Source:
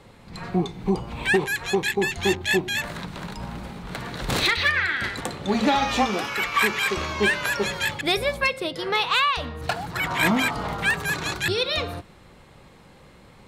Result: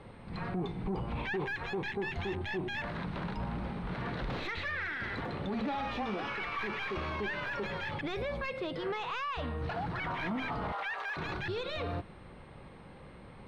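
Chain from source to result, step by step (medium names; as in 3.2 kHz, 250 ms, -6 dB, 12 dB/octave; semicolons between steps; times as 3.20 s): tracing distortion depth 0.13 ms; 10.72–11.17 s: high-pass 590 Hz 24 dB/octave; peak limiter -24.5 dBFS, peak gain reduction 13.5 dB; whistle 8.6 kHz -48 dBFS; saturation -26.5 dBFS, distortion -19 dB; distance through air 290 m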